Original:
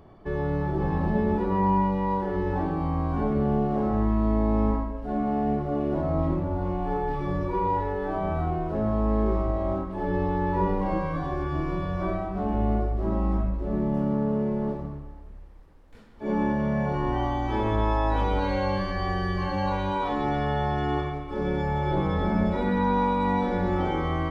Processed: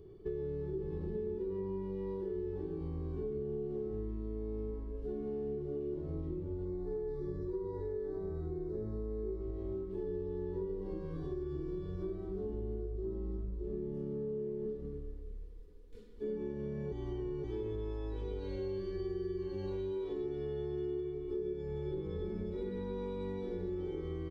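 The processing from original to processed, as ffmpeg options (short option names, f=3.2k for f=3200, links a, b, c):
-filter_complex "[0:a]asettb=1/sr,asplit=3[a][b][c];[a]atrim=end=6.654[d];[b]atrim=start=6.65:end=9.41,asetpts=PTS-STARTPTS,afade=t=in:d=0.004:c=qsin,afade=t=out:st=2.756:d=0.004:c=qsin,asuperstop=centerf=2800:order=20:qfactor=2.1[e];[c]atrim=start=9.406[f];[d][e]acrossfade=d=0.004:c1=hsin:c2=qsin[g];[g][f]acrossfade=d=0.004:c1=qsin:c2=hsin,asettb=1/sr,asplit=3[h][i][j];[h]atrim=end=10.034[k];[i]atrim=start=10.03:end=13.64,asetpts=PTS-STARTPTS,afade=t=in:d=0.004:c=qsin,afade=t=out:st=3.606:d=0.004:c=qsin,equalizer=f=2.4k:t=o:w=0.41:g=-8[l];[j]atrim=start=13.636[m];[k][l]acrossfade=d=0.004:c1=hsin:c2=qsin[n];[n][m]acrossfade=d=0.004:c1=qsin:c2=hsin,asettb=1/sr,asplit=3[o][p][q];[o]atrim=end=14.654[r];[p]atrim=start=14.65:end=16.37,asetpts=PTS-STARTPTS,afade=t=in:d=0.004:c=qsin,afade=t=out:st=1.716:d=0.004:c=qsin,aecho=1:1:4.1:0.65,atrim=end_sample=75852[s];[q]atrim=start=16.366[t];[r][s]acrossfade=d=0.004:c1=hsin:c2=qsin[u];[u][t]acrossfade=d=0.004:c1=qsin:c2=hsin,asettb=1/sr,asplit=3[v][w][x];[v]atrim=end=18.584[y];[w]atrim=start=18.58:end=21.53,asetpts=PTS-STARTPTS,afade=t=in:d=0.004:c=qsin,afade=t=out:st=2.946:d=0.004:c=qsin,equalizer=f=370:w=6.2:g=8.5[z];[x]atrim=start=21.526[aa];[y][z]acrossfade=d=0.004:c1=hsin:c2=qsin[ab];[ab][aa]acrossfade=d=0.004:c1=qsin:c2=hsin,asplit=3[ac][ad][ae];[ac]atrim=end=16.922[af];[ad]atrim=start=16.918:end=17.442,asetpts=PTS-STARTPTS,areverse[ag];[ae]atrim=start=17.438[ah];[af][ag]acrossfade=d=0.004:c1=hsin:c2=hsin[ai];[ai][ah]acrossfade=d=0.004:c1=hsin:c2=hsin,firequalizer=gain_entry='entry(120,0);entry(260,-8);entry(400,12);entry(610,-18);entry(3500,-4)':delay=0.05:min_phase=1,acompressor=threshold=-32dB:ratio=6,volume=-4dB"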